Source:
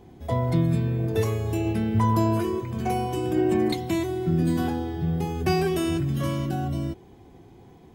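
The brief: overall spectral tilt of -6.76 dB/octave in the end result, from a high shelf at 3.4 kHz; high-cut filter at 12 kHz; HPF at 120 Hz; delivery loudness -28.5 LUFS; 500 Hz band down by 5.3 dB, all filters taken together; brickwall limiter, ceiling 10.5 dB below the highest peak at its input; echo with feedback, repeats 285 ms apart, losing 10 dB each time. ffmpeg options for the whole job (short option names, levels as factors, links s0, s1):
-af "highpass=120,lowpass=12000,equalizer=f=500:t=o:g=-8.5,highshelf=f=3400:g=-4,alimiter=limit=0.0631:level=0:latency=1,aecho=1:1:285|570|855|1140:0.316|0.101|0.0324|0.0104,volume=1.5"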